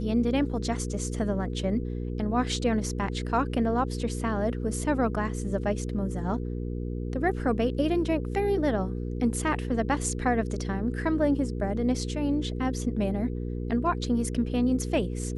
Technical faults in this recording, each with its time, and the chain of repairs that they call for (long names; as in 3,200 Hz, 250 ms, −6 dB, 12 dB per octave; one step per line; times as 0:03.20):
mains hum 60 Hz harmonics 8 −32 dBFS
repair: hum removal 60 Hz, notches 8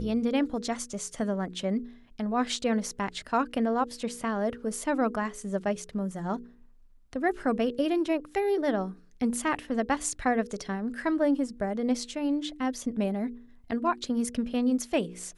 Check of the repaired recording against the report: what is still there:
none of them is left